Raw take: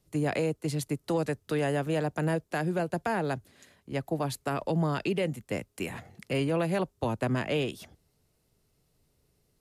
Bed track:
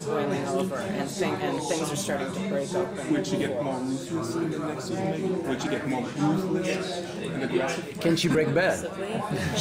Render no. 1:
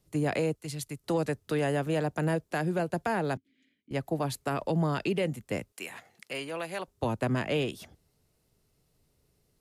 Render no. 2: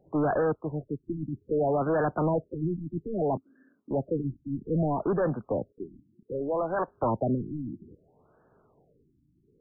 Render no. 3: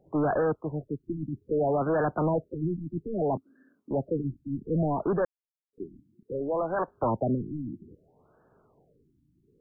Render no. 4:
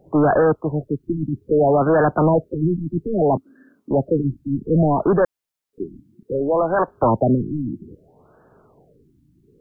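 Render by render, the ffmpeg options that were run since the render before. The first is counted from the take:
ffmpeg -i in.wav -filter_complex "[0:a]asettb=1/sr,asplit=3[link_01][link_02][link_03];[link_01]atrim=end=0.554[link_04];[link_02]atrim=start=0.55:end=1.04,asetpts=PTS-STARTPTS,afade=type=in:duration=0.004:curve=qsin,afade=type=out:start_time=0.486:duration=0.004:curve=qsin,equalizer=frequency=380:width=0.34:gain=-10[link_05];[link_03]atrim=start=1.036[link_06];[link_04][link_05]acrossfade=duration=0.004:curve1=hsin:curve2=qsin[link_07];[link_07][link_06]acrossfade=duration=0.004:curve1=qsin:curve2=hsin,asettb=1/sr,asplit=3[link_08][link_09][link_10];[link_08]atrim=end=3.374[link_11];[link_09]atrim=start=3.37:end=3.91,asetpts=PTS-STARTPTS,afade=type=in:duration=0.004:curve=qsin,afade=type=out:start_time=0.536:duration=0.004:curve=qsin,asplit=3[link_12][link_13][link_14];[link_12]bandpass=frequency=270:width_type=q:width=8,volume=0dB[link_15];[link_13]bandpass=frequency=2290:width_type=q:width=8,volume=-6dB[link_16];[link_14]bandpass=frequency=3010:width_type=q:width=8,volume=-9dB[link_17];[link_15][link_16][link_17]amix=inputs=3:normalize=0[link_18];[link_10]atrim=start=3.906[link_19];[link_11][link_18]acrossfade=duration=0.004:curve1=hsin:curve2=qsin[link_20];[link_20][link_19]acrossfade=duration=0.004:curve1=qsin:curve2=hsin,asettb=1/sr,asplit=3[link_21][link_22][link_23];[link_21]atrim=end=5.724[link_24];[link_22]atrim=start=5.72:end=6.88,asetpts=PTS-STARTPTS,afade=type=in:duration=0.004:curve=qsin,afade=type=out:start_time=1.156:duration=0.004:curve=qsin,highpass=frequency=1100:poles=1[link_25];[link_23]atrim=start=6.876[link_26];[link_24][link_25]acrossfade=duration=0.004:curve1=hsin:curve2=qsin[link_27];[link_27][link_26]acrossfade=duration=0.004:curve1=qsin:curve2=hsin" out.wav
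ffmpeg -i in.wav -filter_complex "[0:a]asplit=2[link_01][link_02];[link_02]highpass=frequency=720:poles=1,volume=25dB,asoftclip=type=tanh:threshold=-18.5dB[link_03];[link_01][link_03]amix=inputs=2:normalize=0,lowpass=frequency=6200:poles=1,volume=-6dB,afftfilt=real='re*lt(b*sr/1024,330*pow(1800/330,0.5+0.5*sin(2*PI*0.62*pts/sr)))':imag='im*lt(b*sr/1024,330*pow(1800/330,0.5+0.5*sin(2*PI*0.62*pts/sr)))':win_size=1024:overlap=0.75" out.wav
ffmpeg -i in.wav -filter_complex "[0:a]asplit=3[link_01][link_02][link_03];[link_01]atrim=end=5.25,asetpts=PTS-STARTPTS,afade=type=out:start_time=5.246:duration=0.004:curve=hsin[link_04];[link_02]atrim=start=5.25:end=5.73,asetpts=PTS-STARTPTS,volume=0[link_05];[link_03]atrim=start=5.73,asetpts=PTS-STARTPTS,afade=type=in:duration=0.004:curve=hsin[link_06];[link_04][link_05][link_06]concat=n=3:v=0:a=1" out.wav
ffmpeg -i in.wav -af "volume=10dB" out.wav

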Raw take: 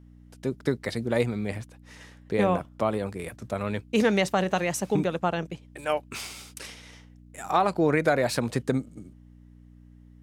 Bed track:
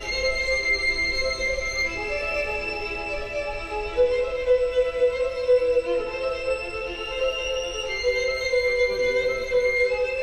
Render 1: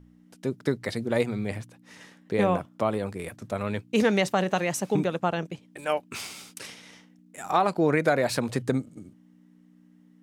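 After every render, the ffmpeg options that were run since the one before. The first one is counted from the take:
ffmpeg -i in.wav -af "bandreject=frequency=60:width_type=h:width=4,bandreject=frequency=120:width_type=h:width=4" out.wav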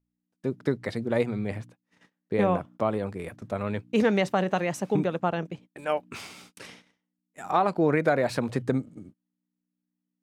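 ffmpeg -i in.wav -af "agate=range=-27dB:threshold=-46dB:ratio=16:detection=peak,highshelf=frequency=3800:gain=-10" out.wav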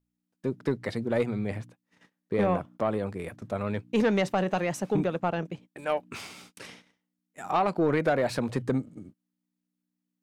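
ffmpeg -i in.wav -af "asoftclip=type=tanh:threshold=-15.5dB" out.wav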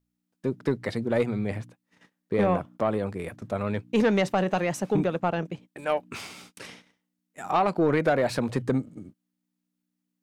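ffmpeg -i in.wav -af "volume=2dB" out.wav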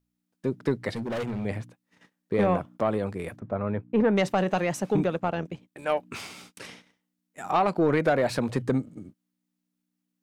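ffmpeg -i in.wav -filter_complex "[0:a]asettb=1/sr,asplit=3[link_01][link_02][link_03];[link_01]atrim=end=0.904[link_04];[link_02]atrim=start=0.9:end=1.45,asetpts=PTS-STARTPTS,afade=type=in:duration=0.004:curve=qsin,afade=type=out:start_time=0.546:duration=0.004:curve=qsin,asoftclip=type=hard:threshold=-28dB[link_05];[link_03]atrim=start=1.446[link_06];[link_04][link_05]acrossfade=duration=0.004:curve1=hsin:curve2=qsin[link_07];[link_07][link_06]acrossfade=duration=0.004:curve1=qsin:curve2=hsin,asplit=3[link_08][link_09][link_10];[link_08]afade=type=out:start_time=3.38:duration=0.02[link_11];[link_09]lowpass=1500,afade=type=in:start_time=3.38:duration=0.02,afade=type=out:start_time=4.16:duration=0.02[link_12];[link_10]afade=type=in:start_time=4.16:duration=0.02[link_13];[link_11][link_12][link_13]amix=inputs=3:normalize=0,asplit=3[link_14][link_15][link_16];[link_14]afade=type=out:start_time=5.15:duration=0.02[link_17];[link_15]tremolo=f=80:d=0.4,afade=type=in:start_time=5.15:duration=0.02,afade=type=out:start_time=5.84:duration=0.02[link_18];[link_16]afade=type=in:start_time=5.84:duration=0.02[link_19];[link_17][link_18][link_19]amix=inputs=3:normalize=0" out.wav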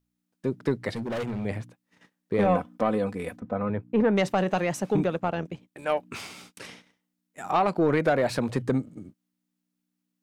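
ffmpeg -i in.wav -filter_complex "[0:a]asettb=1/sr,asplit=3[link_01][link_02][link_03];[link_01]atrim=end=2.454[link_04];[link_02]atrim=start=2.45:end=3.7,asetpts=PTS-STARTPTS,afade=type=in:duration=0.004:curve=qsin,afade=type=out:start_time=1.246:duration=0.004:curve=qsin,aecho=1:1:4:0.65,atrim=end_sample=55125[link_05];[link_03]atrim=start=3.696[link_06];[link_04][link_05]acrossfade=duration=0.004:curve1=hsin:curve2=qsin[link_07];[link_07][link_06]acrossfade=duration=0.004:curve1=qsin:curve2=hsin" out.wav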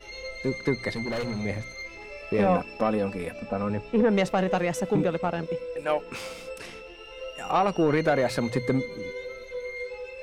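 ffmpeg -i in.wav -i bed.wav -filter_complex "[1:a]volume=-13.5dB[link_01];[0:a][link_01]amix=inputs=2:normalize=0" out.wav

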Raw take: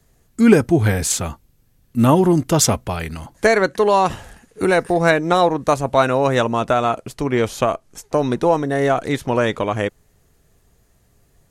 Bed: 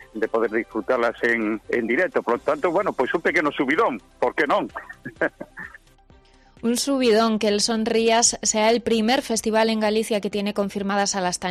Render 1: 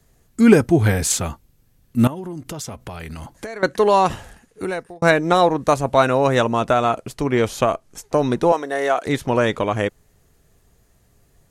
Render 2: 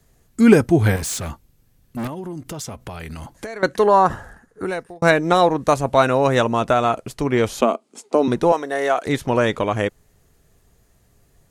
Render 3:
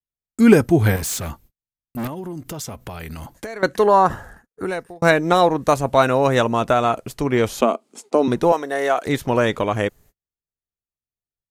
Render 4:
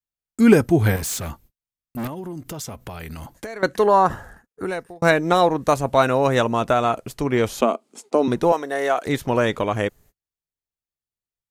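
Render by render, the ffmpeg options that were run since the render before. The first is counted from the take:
ffmpeg -i in.wav -filter_complex "[0:a]asettb=1/sr,asplit=3[link_01][link_02][link_03];[link_01]atrim=end=2.074[link_04];[link_02]atrim=start=2.07:end=3.63,asetpts=PTS-STARTPTS,afade=type=in:duration=0.004:curve=qsin,afade=type=out:start_time=1.556:duration=0.004:curve=qsin,acompressor=threshold=-28dB:ratio=8:attack=3.2:release=140:knee=1:detection=peak[link_05];[link_03]atrim=start=3.626[link_06];[link_04][link_05]acrossfade=duration=0.004:curve1=hsin:curve2=qsin[link_07];[link_07][link_06]acrossfade=duration=0.004:curve1=qsin:curve2=hsin,asettb=1/sr,asplit=3[link_08][link_09][link_10];[link_08]atrim=end=8.524[link_11];[link_09]atrim=start=8.52:end=9.06,asetpts=PTS-STARTPTS,afade=type=in:duration=0.004:curve=qsin,afade=type=out:start_time=0.536:duration=0.004:curve=qsin,highpass=470[link_12];[link_10]atrim=start=9.056[link_13];[link_11][link_12]acrossfade=duration=0.004:curve1=hsin:curve2=qsin[link_14];[link_14][link_13]acrossfade=duration=0.004:curve1=qsin:curve2=hsin,asplit=2[link_15][link_16];[link_15]atrim=end=5.02,asetpts=PTS-STARTPTS,afade=type=out:start_time=4.13:duration=0.89[link_17];[link_16]atrim=start=5.02,asetpts=PTS-STARTPTS,afade=type=in:duration=0.004:curve=hsin[link_18];[link_17][link_18]concat=n=2:v=0:a=1" out.wav
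ffmpeg -i in.wav -filter_complex "[0:a]asettb=1/sr,asplit=3[link_01][link_02][link_03];[link_01]atrim=end=0.964[link_04];[link_02]atrim=start=0.96:end=2.79,asetpts=PTS-STARTPTS,afade=type=in:duration=0.004:curve=qsin,afade=type=out:start_time=1.826:duration=0.004:curve=qsin,volume=24dB,asoftclip=hard,volume=-24dB[link_05];[link_03]atrim=start=2.786[link_06];[link_04][link_05]acrossfade=duration=0.004:curve1=hsin:curve2=qsin[link_07];[link_07][link_06]acrossfade=duration=0.004:curve1=qsin:curve2=hsin,asettb=1/sr,asplit=3[link_08][link_09][link_10];[link_08]atrim=end=3.864[link_11];[link_09]atrim=start=3.86:end=4.66,asetpts=PTS-STARTPTS,afade=type=in:duration=0.004:curve=qsin,afade=type=out:start_time=0.796:duration=0.004:curve=qsin,highshelf=frequency=2000:width_type=q:width=3:gain=-7[link_12];[link_10]atrim=start=4.656[link_13];[link_11][link_12]acrossfade=duration=0.004:curve1=hsin:curve2=qsin[link_14];[link_14][link_13]acrossfade=duration=0.004:curve1=qsin:curve2=hsin,asettb=1/sr,asplit=3[link_15][link_16][link_17];[link_15]atrim=end=7.614[link_18];[link_16]atrim=start=7.61:end=8.28,asetpts=PTS-STARTPTS,afade=type=in:duration=0.004:curve=qsin,afade=type=out:start_time=0.666:duration=0.004:curve=qsin,highpass=frequency=230:width=0.5412,highpass=frequency=230:width=1.3066,equalizer=frequency=230:width_type=q:width=4:gain=10,equalizer=frequency=400:width_type=q:width=4:gain=4,equalizer=frequency=1700:width_type=q:width=4:gain=-9,equalizer=frequency=6000:width_type=q:width=4:gain=-6,lowpass=frequency=9600:width=0.5412,lowpass=frequency=9600:width=1.3066[link_19];[link_17]atrim=start=8.276[link_20];[link_18][link_19]acrossfade=duration=0.004:curve1=hsin:curve2=qsin[link_21];[link_21][link_20]acrossfade=duration=0.004:curve1=qsin:curve2=hsin" out.wav
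ffmpeg -i in.wav -af "agate=range=-42dB:threshold=-47dB:ratio=16:detection=peak,equalizer=frequency=14000:width=3.3:gain=12.5" out.wav
ffmpeg -i in.wav -af "volume=-1.5dB" out.wav

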